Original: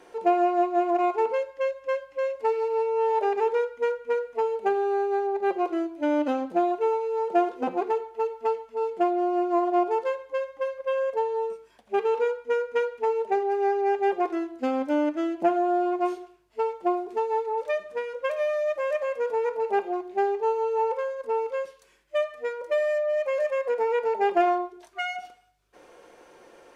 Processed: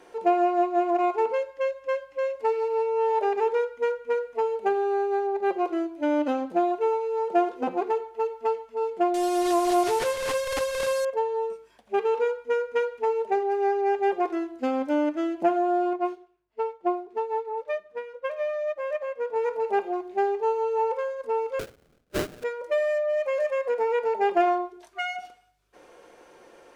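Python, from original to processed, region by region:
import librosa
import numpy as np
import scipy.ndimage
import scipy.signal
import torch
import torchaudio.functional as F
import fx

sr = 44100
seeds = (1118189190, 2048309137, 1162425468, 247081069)

y = fx.chain(x, sr, fx.delta_mod(bps=64000, step_db=-29.0),
    fx.pre_swell(db_per_s=37.0), at=(9.14, 11.05))
y = fx.chain(y, sr, fx.median_filter(points=5),
    fx.high_shelf(hz=5800.0, db=-11.0),
    fx.upward_expand(threshold_db=-45.0, expansion=1.5), at=(15.93, 19.36))
y = fx.chain(y, sr, fx.highpass(hz=610.0, slope=6),
    fx.sample_hold(seeds[0], rate_hz=1000.0, jitter_pct=20), at=(21.59, 22.44))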